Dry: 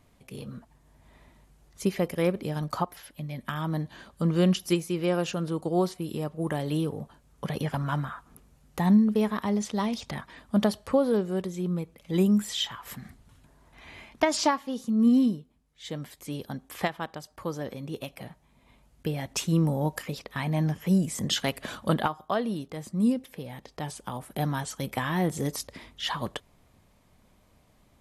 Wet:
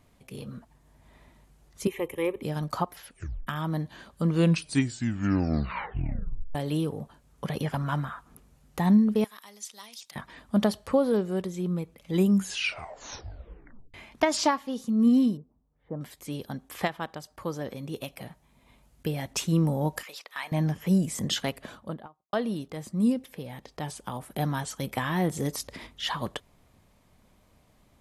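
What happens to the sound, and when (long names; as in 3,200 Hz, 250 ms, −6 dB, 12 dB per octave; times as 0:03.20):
0:01.87–0:02.42: phaser with its sweep stopped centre 980 Hz, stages 8
0:03.06: tape stop 0.41 s
0:04.29: tape stop 2.26 s
0:09.24–0:10.16: first difference
0:12.29: tape stop 1.65 s
0:15.37–0:16.01: low-pass filter 1,100 Hz 24 dB per octave
0:17.75–0:19.31: high-shelf EQ 5,800 Hz +4 dB
0:20.03–0:20.52: high-pass filter 920 Hz
0:21.18–0:22.33: fade out and dull
0:25.12–0:25.87: upward compression, threshold −35 dBFS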